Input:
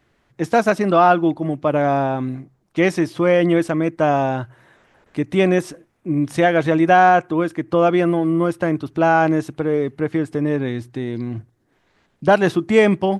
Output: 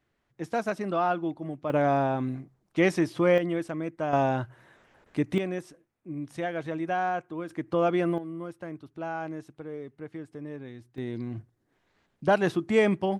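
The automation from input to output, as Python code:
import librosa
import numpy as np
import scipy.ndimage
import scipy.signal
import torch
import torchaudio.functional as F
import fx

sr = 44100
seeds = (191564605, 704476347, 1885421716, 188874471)

y = fx.gain(x, sr, db=fx.steps((0.0, -13.0), (1.7, -6.0), (3.38, -13.0), (4.13, -5.0), (5.38, -16.0), (7.49, -9.0), (8.18, -19.0), (10.98, -8.5)))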